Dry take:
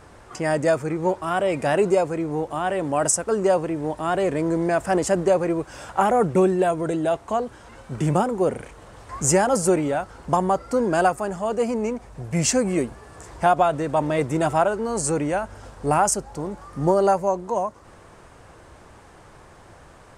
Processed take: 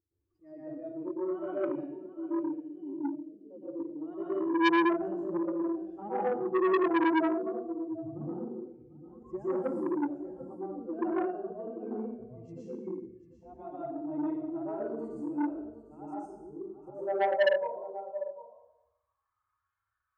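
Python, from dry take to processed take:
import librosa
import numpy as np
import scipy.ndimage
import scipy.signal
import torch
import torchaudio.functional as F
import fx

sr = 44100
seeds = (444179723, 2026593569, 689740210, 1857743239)

p1 = fx.bin_expand(x, sr, power=2.0)
p2 = fx.filter_sweep_bandpass(p1, sr, from_hz=340.0, to_hz=1400.0, start_s=16.21, end_s=19.53, q=6.3)
p3 = fx.transient(p2, sr, attack_db=-2, sustain_db=6, at=(4.87, 5.82), fade=0.02)
p4 = fx.level_steps(p3, sr, step_db=9)
p5 = p3 + F.gain(torch.from_numpy(p4), 0.0).numpy()
p6 = fx.auto_swell(p5, sr, attack_ms=362.0)
p7 = fx.formant_cascade(p6, sr, vowel='i', at=(1.68, 3.5), fade=0.02)
p8 = fx.hpss(p7, sr, part='percussive', gain_db=-10)
p9 = p8 + fx.echo_single(p8, sr, ms=747, db=-14.0, dry=0)
p10 = fx.rev_plate(p9, sr, seeds[0], rt60_s=0.84, hf_ratio=0.95, predelay_ms=105, drr_db=-9.5)
y = fx.transformer_sat(p10, sr, knee_hz=1600.0)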